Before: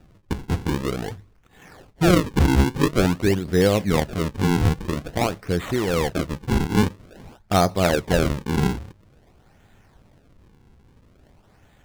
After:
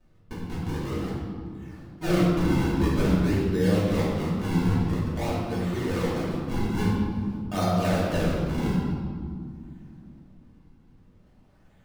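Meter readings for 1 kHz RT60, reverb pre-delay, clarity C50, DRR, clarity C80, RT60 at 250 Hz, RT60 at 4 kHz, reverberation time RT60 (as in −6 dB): 2.0 s, 3 ms, −1.0 dB, −9.5 dB, 1.5 dB, 3.7 s, 1.2 s, 2.2 s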